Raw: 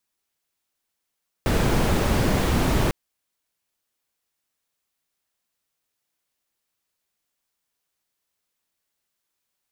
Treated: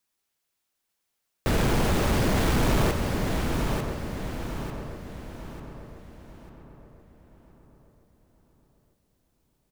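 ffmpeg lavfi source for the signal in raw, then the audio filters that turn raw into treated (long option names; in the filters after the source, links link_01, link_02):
-f lavfi -i "anoisesrc=color=brown:amplitude=0.468:duration=1.45:sample_rate=44100:seed=1"
-filter_complex "[0:a]asplit=2[link_01][link_02];[link_02]aecho=0:1:896|1792|2688|3584:0.447|0.165|0.0612|0.0226[link_03];[link_01][link_03]amix=inputs=2:normalize=0,asoftclip=type=tanh:threshold=-16dB,asplit=2[link_04][link_05];[link_05]adelay=1026,lowpass=frequency=2000:poles=1,volume=-9dB,asplit=2[link_06][link_07];[link_07]adelay=1026,lowpass=frequency=2000:poles=1,volume=0.43,asplit=2[link_08][link_09];[link_09]adelay=1026,lowpass=frequency=2000:poles=1,volume=0.43,asplit=2[link_10][link_11];[link_11]adelay=1026,lowpass=frequency=2000:poles=1,volume=0.43,asplit=2[link_12][link_13];[link_13]adelay=1026,lowpass=frequency=2000:poles=1,volume=0.43[link_14];[link_06][link_08][link_10][link_12][link_14]amix=inputs=5:normalize=0[link_15];[link_04][link_15]amix=inputs=2:normalize=0"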